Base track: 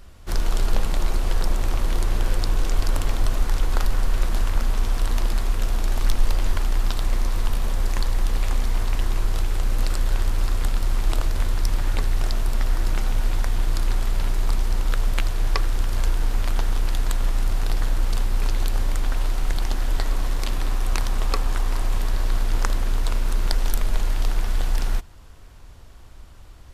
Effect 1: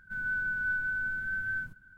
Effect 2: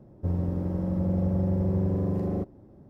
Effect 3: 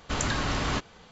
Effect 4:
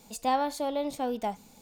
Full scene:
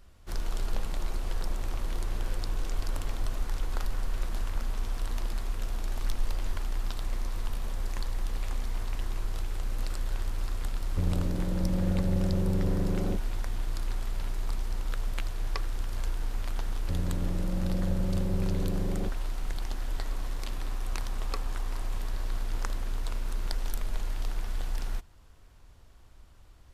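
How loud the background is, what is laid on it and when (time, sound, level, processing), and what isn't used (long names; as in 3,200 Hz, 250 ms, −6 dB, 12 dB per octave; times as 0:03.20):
base track −10 dB
0:10.73: mix in 2 −3 dB
0:16.65: mix in 2 −5.5 dB
not used: 1, 3, 4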